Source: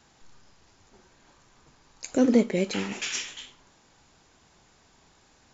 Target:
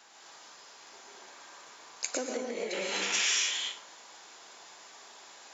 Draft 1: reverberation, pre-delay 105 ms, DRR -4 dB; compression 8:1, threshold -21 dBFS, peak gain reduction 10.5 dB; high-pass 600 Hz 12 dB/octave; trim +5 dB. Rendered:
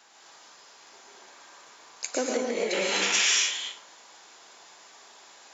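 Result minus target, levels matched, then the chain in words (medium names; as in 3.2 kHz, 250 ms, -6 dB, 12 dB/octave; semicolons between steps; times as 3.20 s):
compression: peak gain reduction -7 dB
reverberation, pre-delay 105 ms, DRR -4 dB; compression 8:1, threshold -29 dBFS, peak gain reduction 17.5 dB; high-pass 600 Hz 12 dB/octave; trim +5 dB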